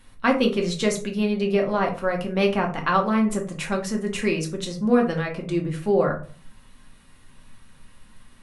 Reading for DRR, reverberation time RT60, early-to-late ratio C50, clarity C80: 1.0 dB, 0.40 s, 10.0 dB, 16.0 dB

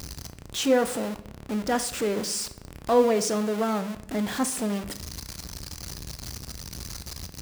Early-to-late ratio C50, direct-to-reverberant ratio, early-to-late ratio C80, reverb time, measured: 14.0 dB, 10.0 dB, 17.0 dB, 0.75 s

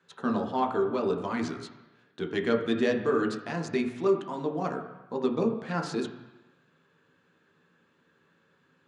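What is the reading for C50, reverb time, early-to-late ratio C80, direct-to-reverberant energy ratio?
8.0 dB, 1.1 s, 10.0 dB, 2.0 dB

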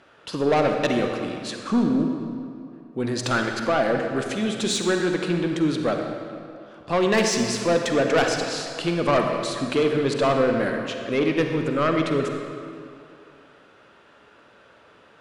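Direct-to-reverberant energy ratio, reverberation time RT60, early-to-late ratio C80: 3.0 dB, 2.6 s, 4.5 dB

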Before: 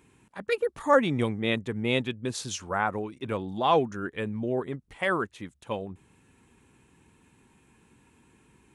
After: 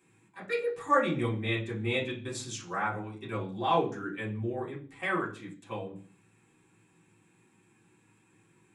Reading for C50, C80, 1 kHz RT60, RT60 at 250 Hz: 10.0 dB, 15.5 dB, 0.40 s, 0.55 s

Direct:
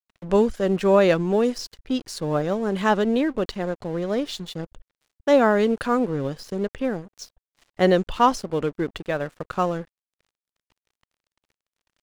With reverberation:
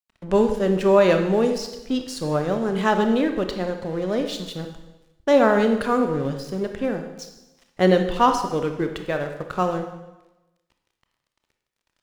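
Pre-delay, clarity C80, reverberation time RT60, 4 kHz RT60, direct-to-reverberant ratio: 23 ms, 9.5 dB, 1.0 s, 0.95 s, 5.5 dB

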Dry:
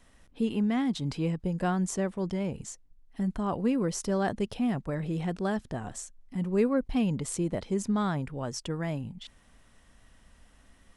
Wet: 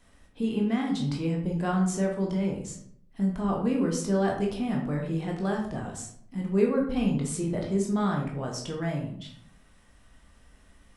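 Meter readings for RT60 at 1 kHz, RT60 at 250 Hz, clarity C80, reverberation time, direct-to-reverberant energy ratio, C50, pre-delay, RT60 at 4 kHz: 0.60 s, 0.85 s, 9.0 dB, 0.65 s, -0.5 dB, 5.0 dB, 14 ms, 0.40 s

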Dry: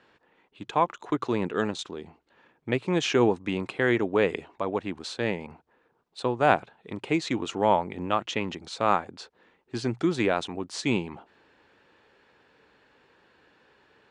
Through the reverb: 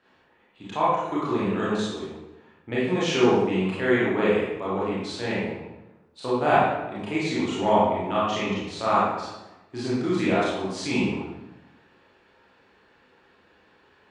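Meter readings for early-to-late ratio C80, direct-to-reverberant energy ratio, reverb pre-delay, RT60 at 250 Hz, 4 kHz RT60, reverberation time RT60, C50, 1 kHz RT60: 1.5 dB, -9.0 dB, 25 ms, 1.2 s, 0.75 s, 1.0 s, -1.5 dB, 1.0 s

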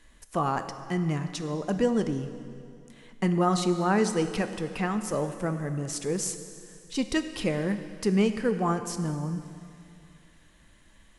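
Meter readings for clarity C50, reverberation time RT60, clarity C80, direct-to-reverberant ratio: 10.0 dB, 2.5 s, 10.5 dB, 8.5 dB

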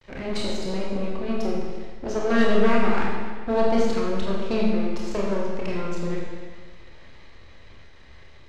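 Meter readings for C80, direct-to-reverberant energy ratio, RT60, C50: 2.0 dB, -4.0 dB, 1.6 s, 0.0 dB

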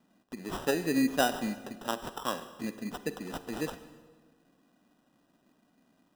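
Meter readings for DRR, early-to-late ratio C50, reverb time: 11.5 dB, 12.5 dB, 1.4 s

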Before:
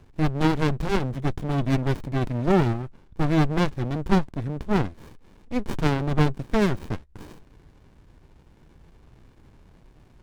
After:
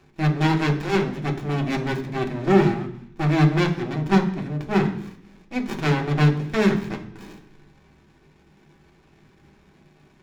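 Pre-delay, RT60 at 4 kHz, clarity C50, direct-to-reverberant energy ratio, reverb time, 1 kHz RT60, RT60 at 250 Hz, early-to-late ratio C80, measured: 3 ms, 0.85 s, 11.0 dB, 1.0 dB, 0.65 s, 0.70 s, 0.90 s, 13.5 dB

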